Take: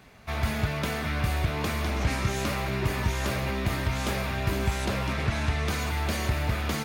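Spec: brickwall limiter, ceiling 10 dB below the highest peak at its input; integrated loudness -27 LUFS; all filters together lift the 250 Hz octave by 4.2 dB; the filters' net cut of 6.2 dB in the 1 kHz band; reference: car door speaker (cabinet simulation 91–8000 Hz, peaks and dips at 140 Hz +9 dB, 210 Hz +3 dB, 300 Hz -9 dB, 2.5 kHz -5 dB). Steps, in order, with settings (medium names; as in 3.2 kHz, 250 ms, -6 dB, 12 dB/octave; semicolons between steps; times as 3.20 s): peaking EQ 250 Hz +4 dB; peaking EQ 1 kHz -8.5 dB; peak limiter -24.5 dBFS; cabinet simulation 91–8000 Hz, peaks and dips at 140 Hz +9 dB, 210 Hz +3 dB, 300 Hz -9 dB, 2.5 kHz -5 dB; trim +5.5 dB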